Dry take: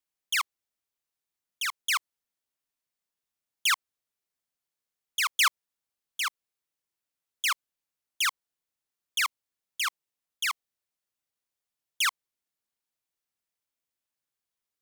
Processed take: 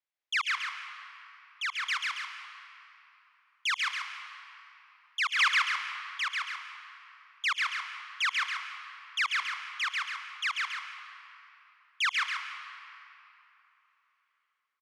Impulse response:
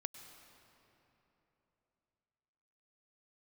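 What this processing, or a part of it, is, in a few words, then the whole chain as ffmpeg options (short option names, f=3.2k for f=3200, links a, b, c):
station announcement: -filter_complex "[0:a]asplit=3[a][b][c];[a]afade=t=out:st=1.76:d=0.02[d];[b]equalizer=f=1.3k:t=o:w=2.4:g=-4,afade=t=in:st=1.76:d=0.02,afade=t=out:st=3.73:d=0.02[e];[c]afade=t=in:st=3.73:d=0.02[f];[d][e][f]amix=inputs=3:normalize=0,asplit=3[g][h][i];[h]adelay=168,afreqshift=-110,volume=-20.5dB[j];[i]adelay=336,afreqshift=-220,volume=-30.4dB[k];[g][j][k]amix=inputs=3:normalize=0,highpass=400,lowpass=4.2k,equalizer=f=2k:t=o:w=0.58:g=4.5,aecho=1:1:139.9|277:0.794|0.398[l];[1:a]atrim=start_sample=2205[m];[l][m]afir=irnorm=-1:irlink=0"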